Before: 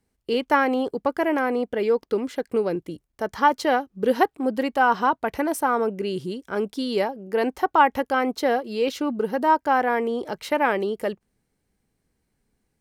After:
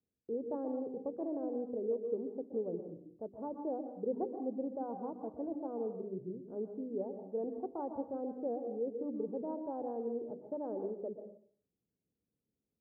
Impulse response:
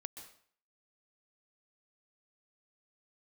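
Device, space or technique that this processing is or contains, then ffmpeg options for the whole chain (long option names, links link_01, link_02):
next room: -filter_complex "[0:a]lowpass=frequency=590:width=0.5412,lowpass=frequency=590:width=1.3066,lowpass=1700,bandreject=frequency=50:width_type=h:width=6,bandreject=frequency=100:width_type=h:width=6,bandreject=frequency=150:width_type=h:width=6,bandreject=frequency=200:width_type=h:width=6,bandreject=frequency=250:width_type=h:width=6,bandreject=frequency=300:width_type=h:width=6,bandreject=frequency=350:width_type=h:width=6,bandreject=frequency=400:width_type=h:width=6[link_01];[1:a]atrim=start_sample=2205[link_02];[link_01][link_02]afir=irnorm=-1:irlink=0,highpass=100,asettb=1/sr,asplit=3[link_03][link_04][link_05];[link_03]atrim=end=3.334[link_06];[link_04]atrim=start=3.33:end=4.2,asetpts=PTS-STARTPTS,afade=type=in:duration=0.004:curve=qsin,afade=type=out:start_time=0.866:duration=0.004:curve=qsin,highshelf=frequency=2700:width_type=q:width=3:gain=6[link_07];[link_05]atrim=start=4.196[link_08];[link_06][link_07]acrossfade=duration=0.004:curve1=hsin:curve2=qsin[link_09];[link_09][link_08]acrossfade=duration=0.004:curve1=qsin:curve2=hsin,volume=-8.5dB"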